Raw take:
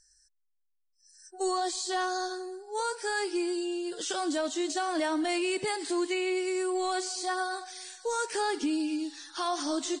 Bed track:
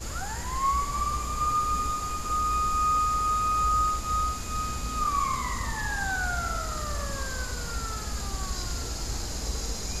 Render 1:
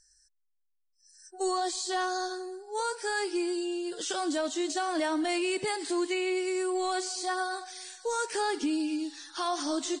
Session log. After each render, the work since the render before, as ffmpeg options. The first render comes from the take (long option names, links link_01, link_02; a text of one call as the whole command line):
ffmpeg -i in.wav -af anull out.wav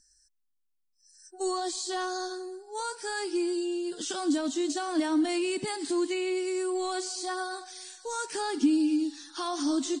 ffmpeg -i in.wav -af "equalizer=frequency=250:width_type=o:width=1:gain=12,equalizer=frequency=500:width_type=o:width=1:gain=-9,equalizer=frequency=2000:width_type=o:width=1:gain=-4" out.wav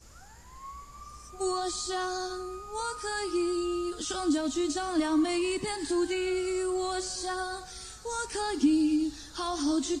ffmpeg -i in.wav -i bed.wav -filter_complex "[1:a]volume=-18.5dB[link_01];[0:a][link_01]amix=inputs=2:normalize=0" out.wav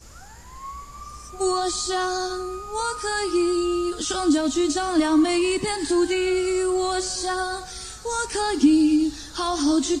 ffmpeg -i in.wav -af "volume=7.5dB" out.wav